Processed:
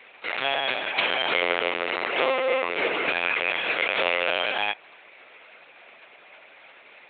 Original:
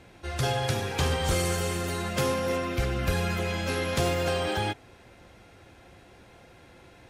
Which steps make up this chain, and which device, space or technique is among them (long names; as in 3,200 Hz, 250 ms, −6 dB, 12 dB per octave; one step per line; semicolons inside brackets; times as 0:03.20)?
talking toy (linear-prediction vocoder at 8 kHz pitch kept; high-pass filter 630 Hz 12 dB per octave; parametric band 2,400 Hz +8.5 dB 0.59 octaves)
0:01.41–0:03.09: dynamic equaliser 410 Hz, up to +6 dB, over −45 dBFS, Q 0.81
level +5 dB